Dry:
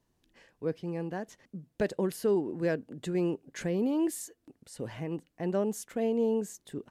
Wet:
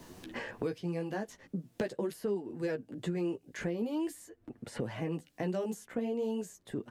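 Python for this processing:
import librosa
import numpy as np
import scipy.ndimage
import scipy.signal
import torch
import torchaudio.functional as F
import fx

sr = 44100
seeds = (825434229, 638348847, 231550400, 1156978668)

y = fx.chorus_voices(x, sr, voices=2, hz=0.43, base_ms=13, depth_ms=4.7, mix_pct=40)
y = fx.band_squash(y, sr, depth_pct=100)
y = y * librosa.db_to_amplitude(-2.0)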